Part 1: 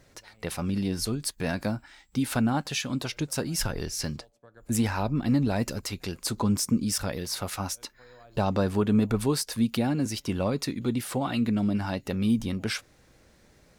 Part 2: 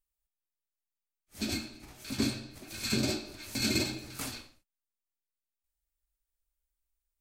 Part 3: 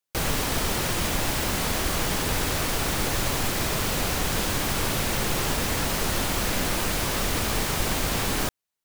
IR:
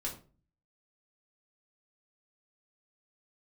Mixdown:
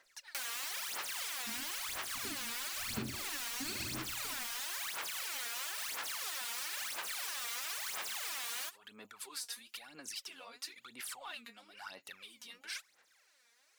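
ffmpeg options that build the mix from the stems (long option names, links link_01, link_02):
-filter_complex "[0:a]alimiter=level_in=0.5dB:limit=-24dB:level=0:latency=1:release=14,volume=-0.5dB,volume=-8dB[link_01];[1:a]dynaudnorm=framelen=290:gausssize=17:maxgain=13dB,adelay=50,volume=-17dB[link_02];[2:a]adelay=200,volume=-2.5dB[link_03];[link_01][link_03]amix=inputs=2:normalize=0,highpass=1300,alimiter=level_in=2dB:limit=-24dB:level=0:latency=1:release=391,volume=-2dB,volume=0dB[link_04];[link_02][link_04]amix=inputs=2:normalize=0,aphaser=in_gain=1:out_gain=1:delay=4.3:decay=0.76:speed=1:type=sinusoidal,acompressor=threshold=-38dB:ratio=5"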